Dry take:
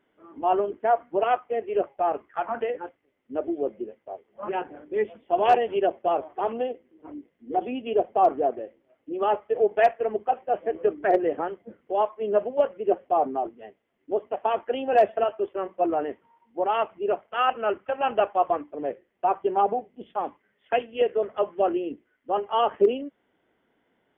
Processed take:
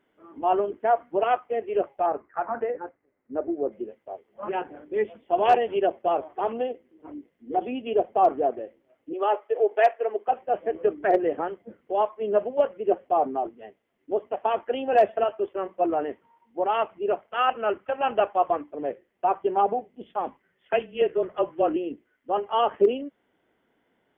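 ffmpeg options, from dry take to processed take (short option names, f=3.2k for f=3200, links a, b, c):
-filter_complex "[0:a]asettb=1/sr,asplit=3[a][b][c];[a]atrim=end=2.064[d];[b]atrim=start=2.06:end=3.72,asetpts=PTS-STARTPTS,afade=t=in:d=0.004:c=qsin,afade=t=out:st=1.656:d=0.004:c=qsin,lowpass=f=1.9k:w=0.5412,lowpass=f=1.9k:w=1.3066[e];[c]atrim=start=3.716[f];[d][e]acrossfade=d=0.004:c1=hsin:c2=qsin[g];[g][f]acrossfade=d=0.004:c1=qsin:c2=hsin,asettb=1/sr,asplit=3[h][i][j];[h]atrim=end=9.134[k];[i]atrim=start=9.13:end=10.28,asetpts=PTS-STARTPTS,afade=t=in:d=0.004:c=qsin,afade=t=out:st=1.146:d=0.004:c=qsin,highpass=f=340:w=0.5412,highpass=f=340:w=1.3066[l];[j]atrim=start=10.276[m];[k][l]acrossfade=d=0.004:c1=hsin:c2=qsin[n];[n][m]acrossfade=d=0.004:c1=qsin:c2=hsin,asettb=1/sr,asplit=3[o][p][q];[o]atrim=end=20.264[r];[p]atrim=start=20.26:end=21.76,asetpts=PTS-STARTPTS,afade=t=in:d=0.004:c=qsin,afade=t=out:st=1.496:d=0.004:c=qsin,afreqshift=-28[s];[q]atrim=start=21.756[t];[r][s]acrossfade=d=0.004:c1=hsin:c2=qsin[u];[u][t]acrossfade=d=0.004:c1=qsin:c2=hsin"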